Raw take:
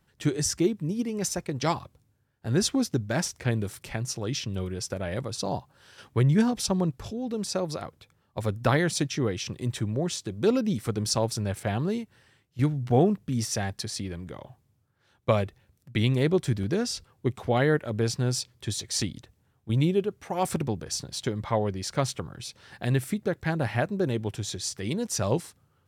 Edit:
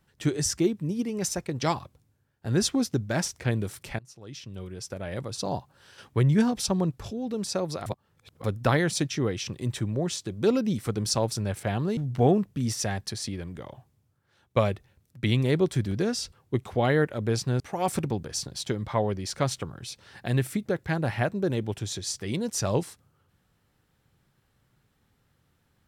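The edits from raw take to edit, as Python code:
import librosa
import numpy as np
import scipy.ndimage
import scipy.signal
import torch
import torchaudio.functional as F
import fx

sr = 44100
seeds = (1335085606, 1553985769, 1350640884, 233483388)

y = fx.edit(x, sr, fx.fade_in_from(start_s=3.99, length_s=1.56, floor_db=-24.0),
    fx.reverse_span(start_s=7.86, length_s=0.58),
    fx.cut(start_s=11.97, length_s=0.72),
    fx.cut(start_s=18.32, length_s=1.85), tone=tone)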